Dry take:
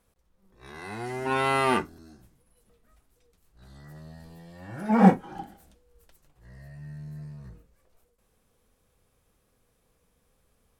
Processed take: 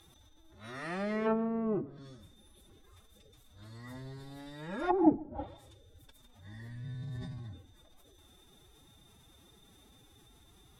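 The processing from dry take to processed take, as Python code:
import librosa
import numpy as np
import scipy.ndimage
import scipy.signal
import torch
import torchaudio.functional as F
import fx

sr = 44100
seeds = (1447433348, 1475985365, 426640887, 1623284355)

p1 = x + 10.0 ** (-58.0 / 20.0) * np.sin(2.0 * np.pi * 3600.0 * np.arange(len(x)) / sr)
p2 = fx.pitch_keep_formants(p1, sr, semitones=9.0)
p3 = fx.env_lowpass_down(p2, sr, base_hz=300.0, full_db=-21.5)
y = p3 + fx.echo_single(p3, sr, ms=138, db=-22.5, dry=0)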